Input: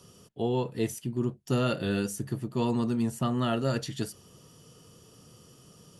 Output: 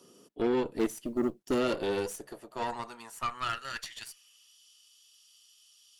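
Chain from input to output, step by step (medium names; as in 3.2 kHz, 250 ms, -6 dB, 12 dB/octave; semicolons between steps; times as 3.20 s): high-pass sweep 290 Hz -> 3.3 kHz, 1.48–4.59 s; Chebyshev shaper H 6 -27 dB, 8 -18 dB, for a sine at -12.5 dBFS; 0.79–1.60 s: companded quantiser 8-bit; trim -4 dB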